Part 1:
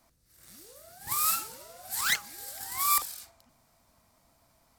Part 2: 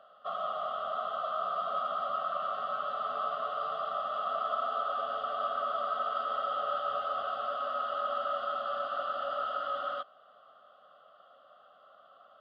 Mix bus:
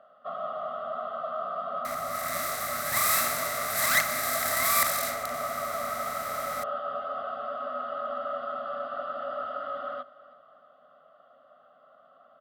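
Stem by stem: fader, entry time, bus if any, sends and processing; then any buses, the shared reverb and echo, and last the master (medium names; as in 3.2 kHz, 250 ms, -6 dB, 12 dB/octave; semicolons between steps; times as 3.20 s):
-2.5 dB, 1.85 s, no send, no echo send, spectral levelling over time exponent 0.4
-1.0 dB, 0.00 s, no send, echo send -20 dB, treble shelf 4.3 kHz -9.5 dB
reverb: none
echo: feedback delay 322 ms, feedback 43%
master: graphic EQ with 31 bands 100 Hz +6 dB, 160 Hz +8 dB, 250 Hz +11 dB, 630 Hz +5 dB, 2 kHz +7 dB, 3.15 kHz -5 dB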